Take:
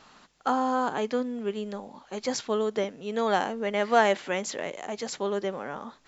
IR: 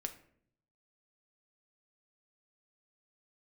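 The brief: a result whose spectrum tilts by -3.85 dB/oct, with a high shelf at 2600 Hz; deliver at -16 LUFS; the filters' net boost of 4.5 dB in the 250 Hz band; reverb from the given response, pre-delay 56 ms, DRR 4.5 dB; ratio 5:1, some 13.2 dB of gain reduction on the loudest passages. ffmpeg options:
-filter_complex "[0:a]equalizer=f=250:t=o:g=5,highshelf=f=2.6k:g=3.5,acompressor=threshold=-29dB:ratio=5,asplit=2[a][b];[1:a]atrim=start_sample=2205,adelay=56[c];[b][c]afir=irnorm=-1:irlink=0,volume=-3dB[d];[a][d]amix=inputs=2:normalize=0,volume=16.5dB"

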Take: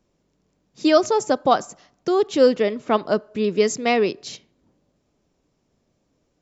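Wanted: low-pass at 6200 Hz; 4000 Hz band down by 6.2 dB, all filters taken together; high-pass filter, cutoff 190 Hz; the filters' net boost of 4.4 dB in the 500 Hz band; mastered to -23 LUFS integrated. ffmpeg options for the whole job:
-af "highpass=190,lowpass=6.2k,equalizer=f=500:t=o:g=5.5,equalizer=f=4k:t=o:g=-7.5,volume=-6dB"

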